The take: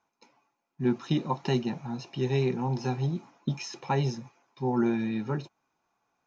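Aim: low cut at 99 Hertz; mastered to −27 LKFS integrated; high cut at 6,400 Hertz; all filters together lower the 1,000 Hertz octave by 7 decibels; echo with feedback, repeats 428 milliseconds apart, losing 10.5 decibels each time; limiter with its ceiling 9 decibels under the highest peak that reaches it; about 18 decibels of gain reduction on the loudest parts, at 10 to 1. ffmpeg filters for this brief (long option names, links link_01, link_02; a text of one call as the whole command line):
ffmpeg -i in.wav -af "highpass=99,lowpass=6400,equalizer=frequency=1000:width_type=o:gain=-9,acompressor=threshold=-41dB:ratio=10,alimiter=level_in=14dB:limit=-24dB:level=0:latency=1,volume=-14dB,aecho=1:1:428|856|1284:0.299|0.0896|0.0269,volume=20.5dB" out.wav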